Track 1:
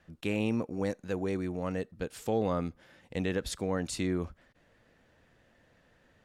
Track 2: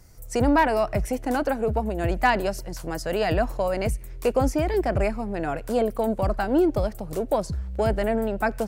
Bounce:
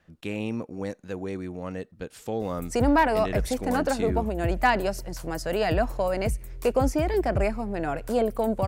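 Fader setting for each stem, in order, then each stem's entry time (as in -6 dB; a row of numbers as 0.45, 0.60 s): -0.5, -1.0 dB; 0.00, 2.40 s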